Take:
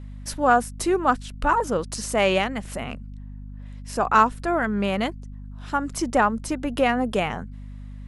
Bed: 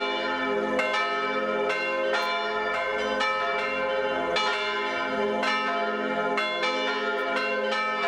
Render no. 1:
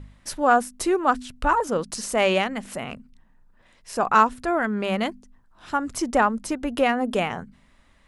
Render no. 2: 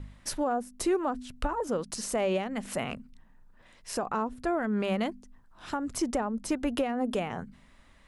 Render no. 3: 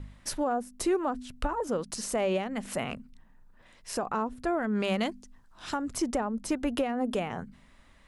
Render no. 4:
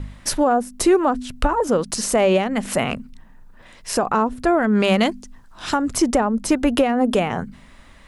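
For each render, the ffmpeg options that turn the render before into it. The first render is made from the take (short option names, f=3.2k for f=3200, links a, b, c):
-af "bandreject=f=50:t=h:w=4,bandreject=f=100:t=h:w=4,bandreject=f=150:t=h:w=4,bandreject=f=200:t=h:w=4,bandreject=f=250:t=h:w=4"
-filter_complex "[0:a]acrossover=split=730[a][b];[b]acompressor=threshold=-30dB:ratio=10[c];[a][c]amix=inputs=2:normalize=0,alimiter=limit=-19.5dB:level=0:latency=1:release=348"
-filter_complex "[0:a]asettb=1/sr,asplit=3[a][b][c];[a]atrim=end=4.754[d];[b]atrim=start=4.75:end=5.82,asetpts=PTS-STARTPTS,afade=t=in:d=0.004:c=qsin,afade=t=out:st=1.066:d=0.004:c=qsin,equalizer=f=5.8k:w=0.51:g=7[e];[c]atrim=start=5.816[f];[d][e]acrossfade=d=0.004:c1=hsin:c2=qsin[g];[g][f]acrossfade=d=0.004:c1=qsin:c2=hsin"
-af "volume=11.5dB"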